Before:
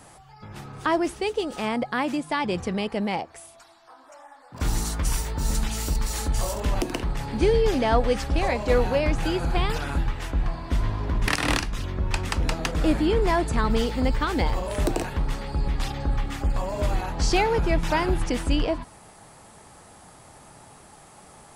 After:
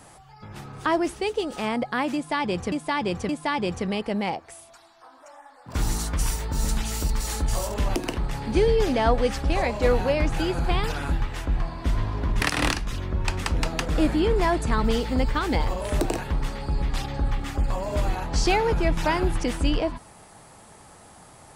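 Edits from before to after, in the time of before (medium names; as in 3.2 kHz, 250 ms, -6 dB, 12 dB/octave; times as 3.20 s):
2.15–2.72 s: loop, 3 plays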